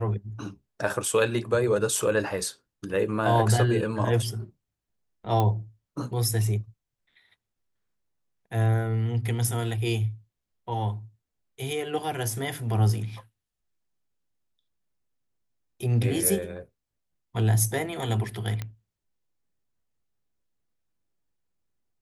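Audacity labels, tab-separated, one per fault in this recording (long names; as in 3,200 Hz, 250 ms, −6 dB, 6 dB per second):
5.400000	5.400000	click −13 dBFS
18.620000	18.620000	click −18 dBFS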